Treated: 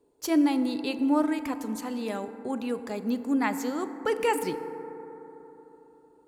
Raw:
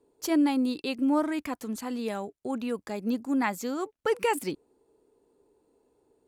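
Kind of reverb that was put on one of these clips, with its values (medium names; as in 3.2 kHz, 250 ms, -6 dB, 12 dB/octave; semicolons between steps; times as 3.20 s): FDN reverb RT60 3.8 s, high-frequency decay 0.25×, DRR 9.5 dB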